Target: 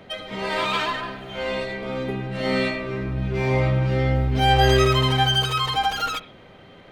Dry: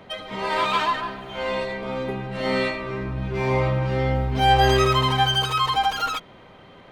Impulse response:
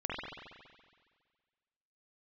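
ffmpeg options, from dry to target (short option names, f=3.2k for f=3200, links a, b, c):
-filter_complex "[0:a]equalizer=f=1k:t=o:w=0.54:g=-6.5,asplit=2[a][b];[1:a]atrim=start_sample=2205,atrim=end_sample=6174[c];[b][c]afir=irnorm=-1:irlink=0,volume=-15.5dB[d];[a][d]amix=inputs=2:normalize=0"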